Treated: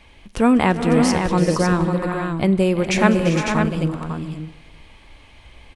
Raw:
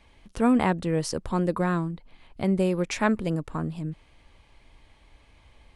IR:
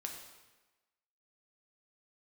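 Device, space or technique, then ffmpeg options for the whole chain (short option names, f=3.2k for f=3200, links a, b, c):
compressed reverb return: -filter_complex "[0:a]asplit=2[a][b];[1:a]atrim=start_sample=2205[c];[b][c]afir=irnorm=-1:irlink=0,acompressor=threshold=-29dB:ratio=6,volume=-4dB[d];[a][d]amix=inputs=2:normalize=0,equalizer=f=2.7k:t=o:w=0.83:g=4,aecho=1:1:200|342|376|396|460|552:0.112|0.2|0.133|0.211|0.398|0.501,volume=4.5dB"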